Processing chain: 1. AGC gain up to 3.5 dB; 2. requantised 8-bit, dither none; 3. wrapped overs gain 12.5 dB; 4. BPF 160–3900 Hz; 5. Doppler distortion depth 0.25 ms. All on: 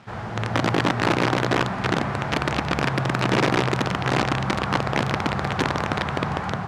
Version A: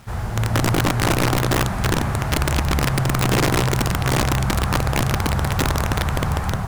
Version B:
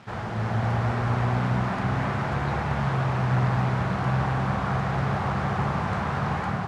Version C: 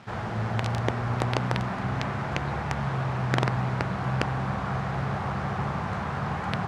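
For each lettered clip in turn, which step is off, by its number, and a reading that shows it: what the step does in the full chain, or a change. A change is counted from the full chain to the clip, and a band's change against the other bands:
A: 4, 8 kHz band +10.5 dB; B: 3, crest factor change -3.0 dB; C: 1, crest factor change +4.5 dB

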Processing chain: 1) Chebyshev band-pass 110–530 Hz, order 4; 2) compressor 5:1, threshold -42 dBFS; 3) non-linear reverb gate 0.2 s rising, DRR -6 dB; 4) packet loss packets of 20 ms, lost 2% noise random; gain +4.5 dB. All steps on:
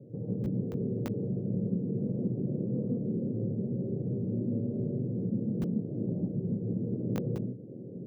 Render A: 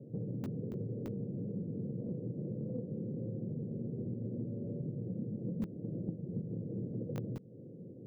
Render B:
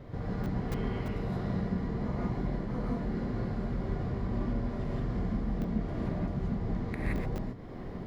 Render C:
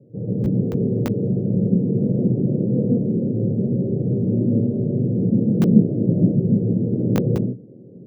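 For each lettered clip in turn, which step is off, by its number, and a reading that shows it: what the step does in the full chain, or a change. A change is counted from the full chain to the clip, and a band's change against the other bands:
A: 3, loudness change -7.0 LU; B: 1, loudness change -1.5 LU; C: 2, mean gain reduction 11.5 dB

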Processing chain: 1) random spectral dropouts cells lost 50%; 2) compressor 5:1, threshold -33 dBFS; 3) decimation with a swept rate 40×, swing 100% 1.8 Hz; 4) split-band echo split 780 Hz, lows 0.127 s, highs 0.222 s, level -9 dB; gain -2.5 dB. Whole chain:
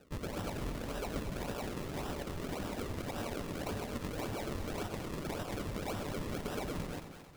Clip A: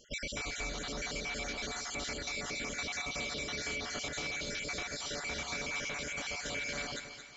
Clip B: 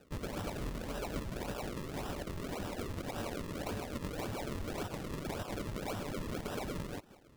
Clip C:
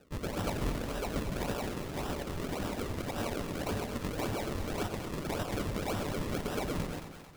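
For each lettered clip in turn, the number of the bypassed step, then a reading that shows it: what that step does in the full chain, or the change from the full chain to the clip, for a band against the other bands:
3, 2 kHz band +12.5 dB; 4, echo-to-direct -7.5 dB to none; 2, mean gain reduction 3.0 dB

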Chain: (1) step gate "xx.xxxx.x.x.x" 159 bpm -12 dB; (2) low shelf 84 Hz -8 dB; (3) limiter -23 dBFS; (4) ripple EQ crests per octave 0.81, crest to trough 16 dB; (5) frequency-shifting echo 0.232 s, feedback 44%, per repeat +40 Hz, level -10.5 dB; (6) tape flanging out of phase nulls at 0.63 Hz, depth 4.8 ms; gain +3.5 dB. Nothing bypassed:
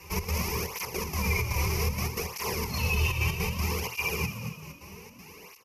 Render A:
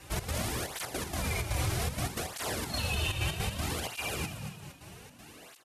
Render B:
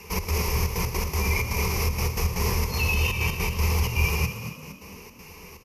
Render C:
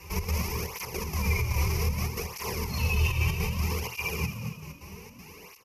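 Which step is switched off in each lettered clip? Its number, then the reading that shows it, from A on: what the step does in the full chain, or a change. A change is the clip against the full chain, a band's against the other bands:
4, 4 kHz band +3.0 dB; 6, 125 Hz band +2.0 dB; 2, 125 Hz band +4.0 dB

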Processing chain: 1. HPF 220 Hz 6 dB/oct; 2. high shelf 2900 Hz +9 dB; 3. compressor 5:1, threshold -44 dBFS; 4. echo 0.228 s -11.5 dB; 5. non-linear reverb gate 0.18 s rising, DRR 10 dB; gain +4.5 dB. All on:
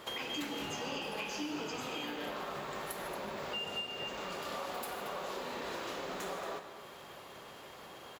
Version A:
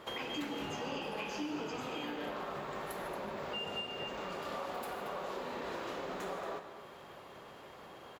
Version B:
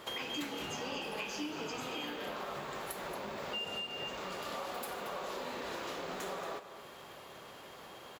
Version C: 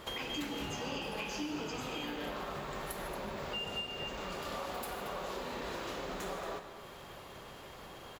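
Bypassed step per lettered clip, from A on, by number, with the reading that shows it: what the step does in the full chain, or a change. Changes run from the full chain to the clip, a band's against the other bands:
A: 2, 8 kHz band -6.5 dB; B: 5, echo-to-direct -7.5 dB to -11.5 dB; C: 1, 125 Hz band +5.0 dB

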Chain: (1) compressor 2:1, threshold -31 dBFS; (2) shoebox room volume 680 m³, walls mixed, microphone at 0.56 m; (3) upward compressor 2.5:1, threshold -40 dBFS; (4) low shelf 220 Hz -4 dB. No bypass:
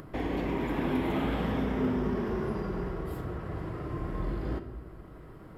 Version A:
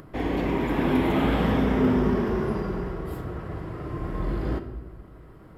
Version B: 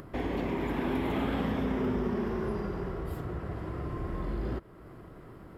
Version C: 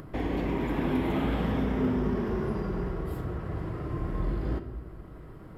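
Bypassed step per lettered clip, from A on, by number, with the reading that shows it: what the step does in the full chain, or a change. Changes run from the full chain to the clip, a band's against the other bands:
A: 1, mean gain reduction 4.0 dB; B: 2, momentary loudness spread change +4 LU; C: 4, 125 Hz band +3.0 dB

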